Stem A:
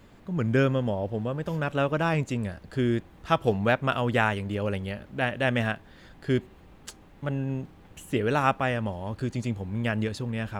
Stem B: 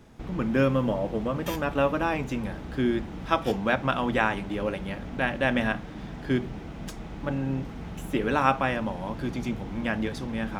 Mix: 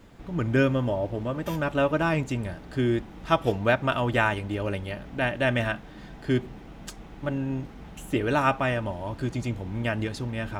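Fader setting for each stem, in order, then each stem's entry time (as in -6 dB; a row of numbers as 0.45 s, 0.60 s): 0.0 dB, -5.5 dB; 0.00 s, 0.00 s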